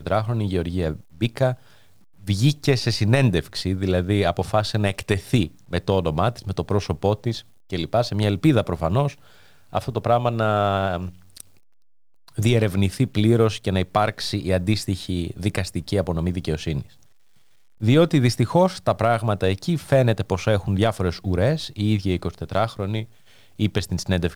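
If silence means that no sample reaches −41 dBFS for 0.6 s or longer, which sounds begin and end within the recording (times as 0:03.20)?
0:12.28–0:17.03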